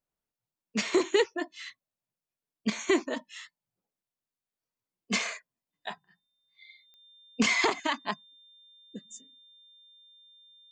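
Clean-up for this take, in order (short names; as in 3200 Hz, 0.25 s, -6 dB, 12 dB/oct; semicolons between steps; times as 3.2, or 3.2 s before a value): de-click; notch 3600 Hz, Q 30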